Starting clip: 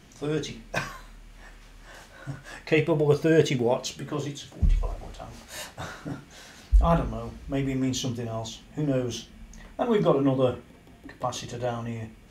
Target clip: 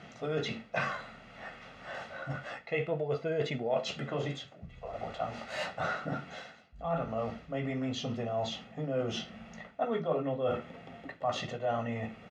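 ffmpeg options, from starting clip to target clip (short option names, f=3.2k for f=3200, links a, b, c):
-af "aecho=1:1:1.5:0.61,areverse,acompressor=threshold=-33dB:ratio=12,areverse,highpass=190,lowpass=2.8k,volume=6dB"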